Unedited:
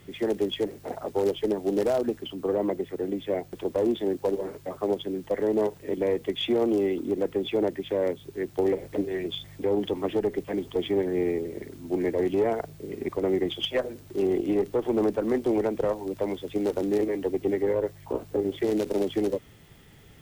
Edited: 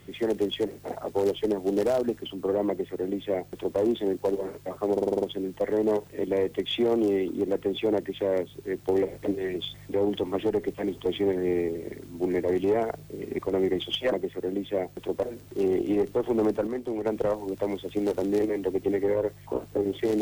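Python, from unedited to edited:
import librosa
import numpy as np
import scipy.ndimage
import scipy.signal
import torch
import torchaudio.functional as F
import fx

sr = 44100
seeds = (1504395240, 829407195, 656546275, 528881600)

y = fx.edit(x, sr, fx.duplicate(start_s=2.68, length_s=1.11, to_s=13.82),
    fx.stutter(start_s=4.92, slice_s=0.05, count=7),
    fx.clip_gain(start_s=15.26, length_s=0.39, db=-6.5), tone=tone)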